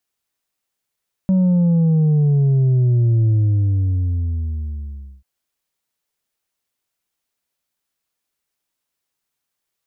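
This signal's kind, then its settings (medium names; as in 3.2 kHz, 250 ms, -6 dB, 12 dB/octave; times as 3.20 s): sub drop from 190 Hz, over 3.94 s, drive 3.5 dB, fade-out 1.94 s, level -12.5 dB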